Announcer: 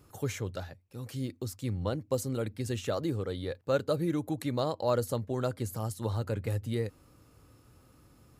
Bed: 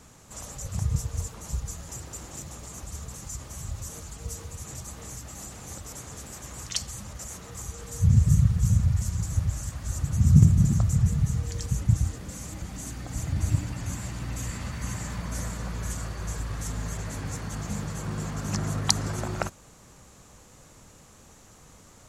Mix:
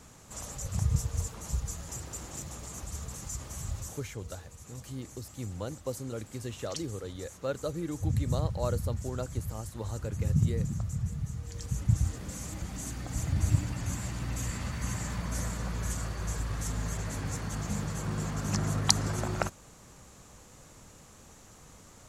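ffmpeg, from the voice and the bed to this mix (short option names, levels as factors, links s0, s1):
-filter_complex "[0:a]adelay=3750,volume=0.562[s0];[1:a]volume=2.66,afade=t=out:st=3.76:d=0.3:silence=0.334965,afade=t=in:st=11.38:d=0.86:silence=0.334965[s1];[s0][s1]amix=inputs=2:normalize=0"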